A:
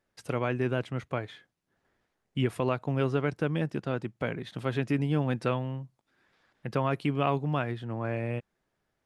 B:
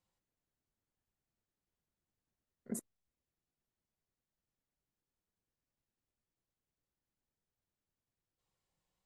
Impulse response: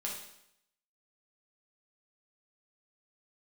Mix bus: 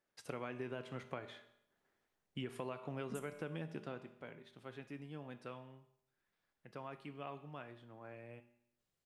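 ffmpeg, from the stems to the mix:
-filter_complex "[0:a]lowshelf=f=140:g=-12,volume=-9dB,afade=t=out:st=3.79:d=0.3:silence=0.266073,asplit=2[a][b];[b]volume=-7dB[c];[1:a]equalizer=f=920:w=4:g=-12.5,adelay=400,volume=-4.5dB,asplit=2[d][e];[e]volume=-6dB[f];[2:a]atrim=start_sample=2205[g];[c][f]amix=inputs=2:normalize=0[h];[h][g]afir=irnorm=-1:irlink=0[i];[a][d][i]amix=inputs=3:normalize=0,acompressor=threshold=-39dB:ratio=6"

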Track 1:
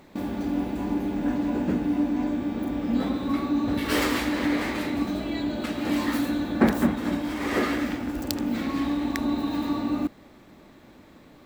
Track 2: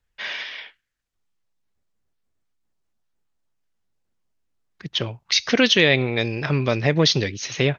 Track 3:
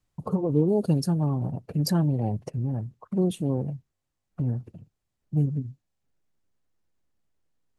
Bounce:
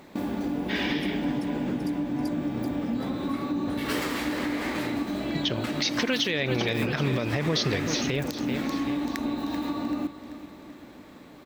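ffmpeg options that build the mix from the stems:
-filter_complex "[0:a]volume=3dB,asplit=2[a][b];[b]volume=-19.5dB[c];[1:a]adelay=500,volume=-1.5dB,asplit=2[d][e];[e]volume=-13.5dB[f];[2:a]volume=-12.5dB,asplit=2[g][h];[h]volume=-4dB[i];[a][g]amix=inputs=2:normalize=0,lowshelf=f=73:g=-9.5,acompressor=threshold=-26dB:ratio=6,volume=0dB[j];[c][f][i]amix=inputs=3:normalize=0,aecho=0:1:386|772|1158|1544|1930|2316|2702:1|0.51|0.26|0.133|0.0677|0.0345|0.0176[k];[d][j][k]amix=inputs=3:normalize=0,alimiter=limit=-15.5dB:level=0:latency=1:release=111"

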